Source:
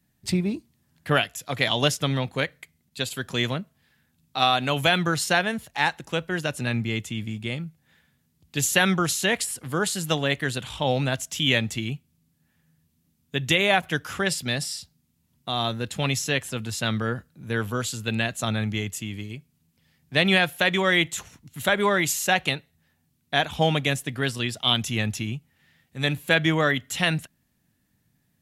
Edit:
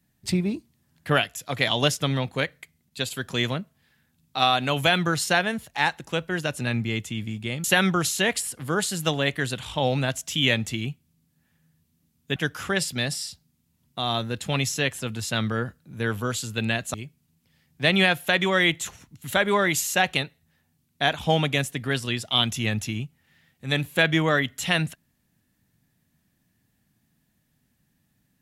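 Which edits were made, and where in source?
0:07.64–0:08.68: remove
0:13.40–0:13.86: remove
0:18.44–0:19.26: remove

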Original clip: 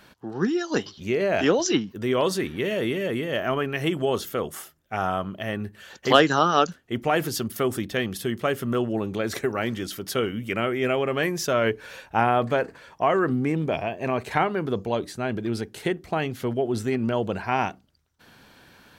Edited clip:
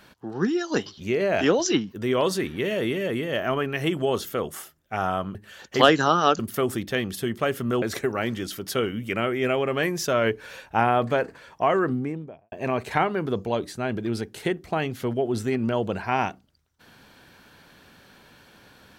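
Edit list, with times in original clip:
0:05.35–0:05.66: remove
0:06.70–0:07.41: remove
0:08.84–0:09.22: remove
0:13.11–0:13.92: fade out and dull

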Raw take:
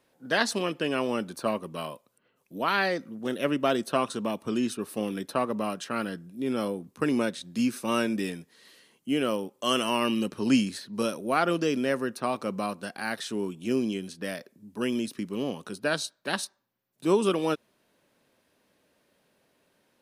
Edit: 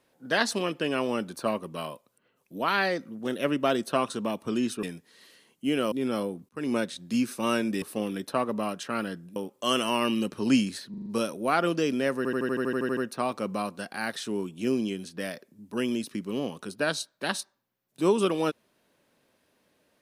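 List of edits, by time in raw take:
0:04.83–0:06.37: swap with 0:08.27–0:09.36
0:06.94–0:07.22: fade in
0:10.90: stutter 0.04 s, 5 plays
0:12.01: stutter 0.08 s, 11 plays

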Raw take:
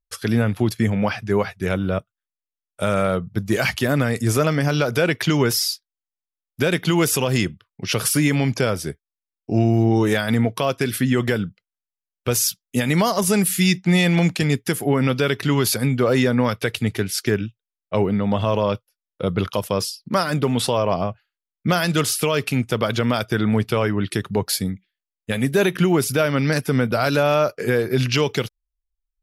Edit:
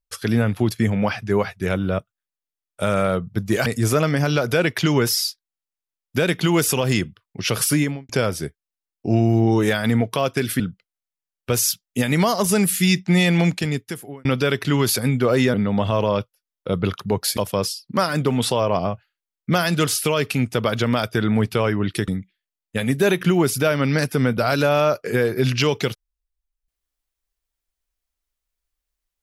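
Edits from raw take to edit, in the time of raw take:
0:03.66–0:04.10: remove
0:08.17–0:08.53: fade out and dull
0:11.04–0:11.38: remove
0:14.19–0:15.03: fade out
0:16.32–0:18.08: remove
0:24.25–0:24.62: move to 0:19.54

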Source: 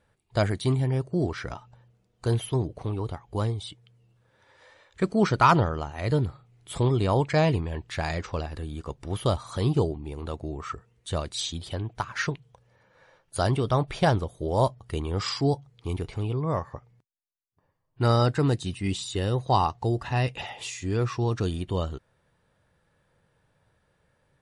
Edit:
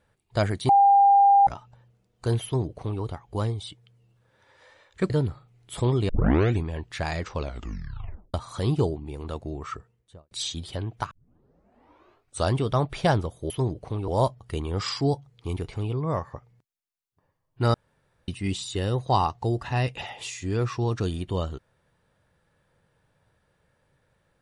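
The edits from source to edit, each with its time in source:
0:00.69–0:01.47: beep over 799 Hz −13 dBFS
0:02.44–0:03.02: duplicate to 0:14.48
0:05.10–0:06.08: remove
0:07.07: tape start 0.53 s
0:08.33: tape stop 0.99 s
0:10.64–0:11.29: fade out and dull
0:12.09: tape start 1.42 s
0:18.14–0:18.68: fill with room tone

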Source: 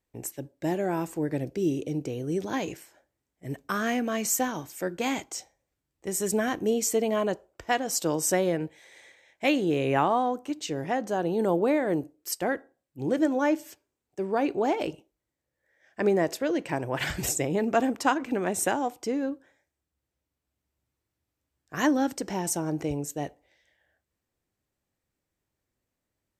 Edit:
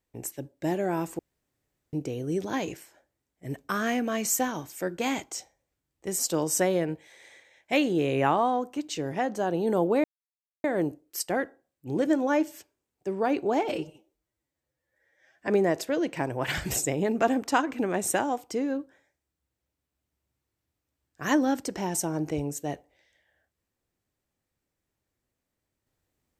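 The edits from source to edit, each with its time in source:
0:01.19–0:01.93: fill with room tone
0:06.19–0:07.91: remove
0:11.76: splice in silence 0.60 s
0:14.81–0:16.00: time-stretch 1.5×

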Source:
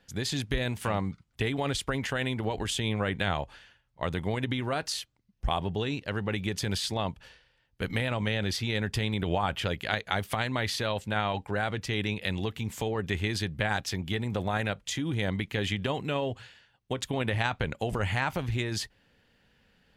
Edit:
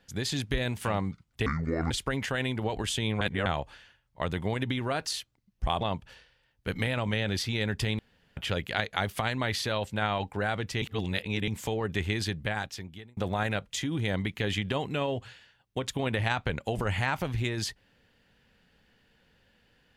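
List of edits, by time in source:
0:01.46–0:01.72: play speed 58%
0:03.02–0:03.27: reverse
0:05.62–0:06.95: remove
0:09.13–0:09.51: fill with room tone
0:11.96–0:12.62: reverse
0:13.41–0:14.31: fade out

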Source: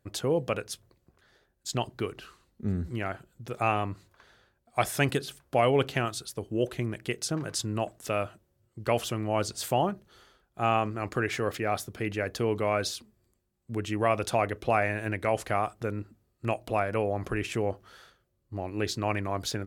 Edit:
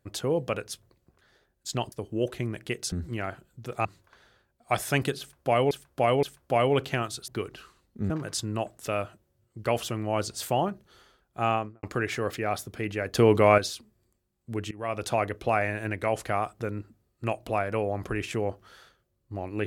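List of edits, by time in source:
0:01.92–0:02.74: swap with 0:06.31–0:07.31
0:03.67–0:03.92: remove
0:05.26–0:05.78: repeat, 3 plays
0:10.70–0:11.04: fade out and dull
0:12.36–0:12.79: clip gain +8.5 dB
0:13.92–0:14.31: fade in, from −21.5 dB

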